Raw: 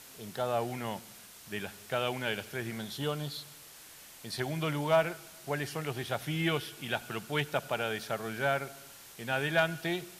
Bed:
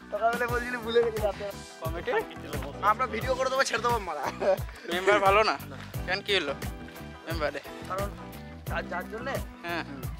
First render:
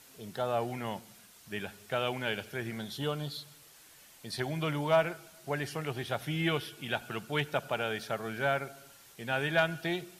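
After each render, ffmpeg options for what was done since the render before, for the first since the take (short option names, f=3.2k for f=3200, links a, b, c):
-af "afftdn=nr=6:nf=-52"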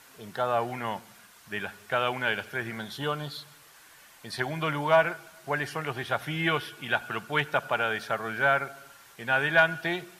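-af "equalizer=f=1.3k:w=0.87:g=10.5,bandreject=f=1.3k:w=17"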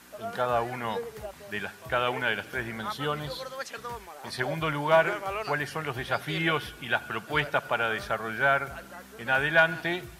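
-filter_complex "[1:a]volume=-11.5dB[a];[0:a][a]amix=inputs=2:normalize=0"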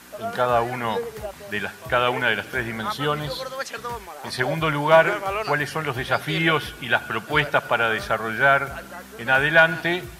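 -af "volume=6.5dB,alimiter=limit=-3dB:level=0:latency=1"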